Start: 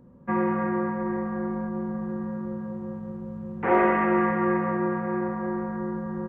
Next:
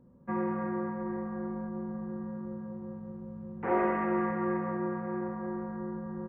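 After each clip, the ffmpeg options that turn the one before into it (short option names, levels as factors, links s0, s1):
-af "highshelf=f=2500:g=-10,volume=0.473"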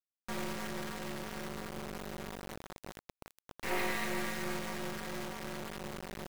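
-af "aexciter=amount=12.1:drive=2.9:freq=2000,acrusher=bits=3:dc=4:mix=0:aa=0.000001,volume=0.631"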